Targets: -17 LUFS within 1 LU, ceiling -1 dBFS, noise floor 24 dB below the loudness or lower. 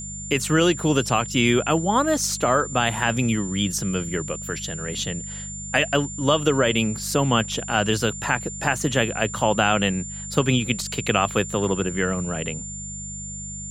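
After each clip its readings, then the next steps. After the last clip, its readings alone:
hum 50 Hz; highest harmonic 200 Hz; hum level -36 dBFS; steady tone 7.2 kHz; tone level -33 dBFS; loudness -22.5 LUFS; peak level -4.5 dBFS; loudness target -17.0 LUFS
-> de-hum 50 Hz, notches 4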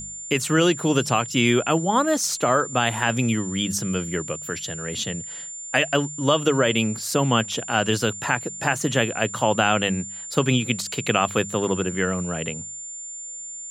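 hum not found; steady tone 7.2 kHz; tone level -33 dBFS
-> band-stop 7.2 kHz, Q 30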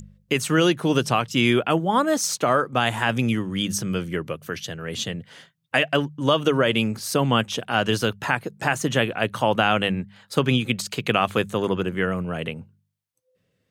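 steady tone not found; loudness -23.0 LUFS; peak level -5.0 dBFS; loudness target -17.0 LUFS
-> trim +6 dB; peak limiter -1 dBFS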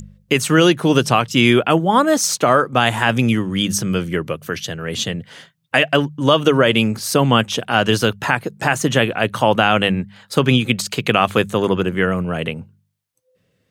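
loudness -17.0 LUFS; peak level -1.0 dBFS; noise floor -66 dBFS

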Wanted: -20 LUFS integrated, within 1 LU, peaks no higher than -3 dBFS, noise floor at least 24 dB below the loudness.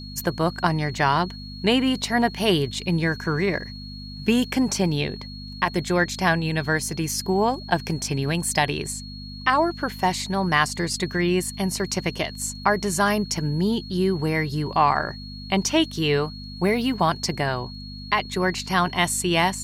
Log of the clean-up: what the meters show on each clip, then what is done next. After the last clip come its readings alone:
hum 50 Hz; highest harmonic 250 Hz; hum level -35 dBFS; steady tone 4.3 kHz; tone level -40 dBFS; loudness -23.5 LUFS; peak level -5.0 dBFS; loudness target -20.0 LUFS
-> de-hum 50 Hz, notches 5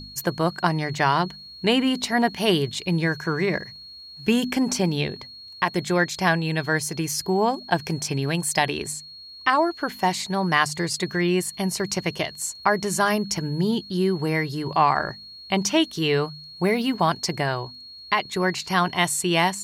hum not found; steady tone 4.3 kHz; tone level -40 dBFS
-> band-stop 4.3 kHz, Q 30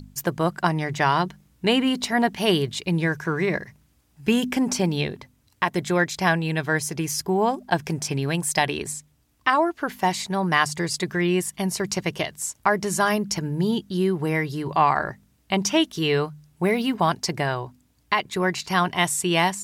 steady tone not found; loudness -24.0 LUFS; peak level -5.0 dBFS; loudness target -20.0 LUFS
-> trim +4 dB; peak limiter -3 dBFS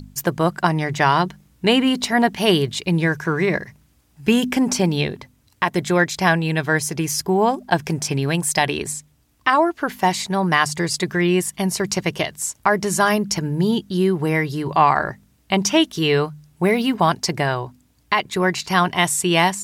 loudness -20.0 LUFS; peak level -3.0 dBFS; noise floor -59 dBFS

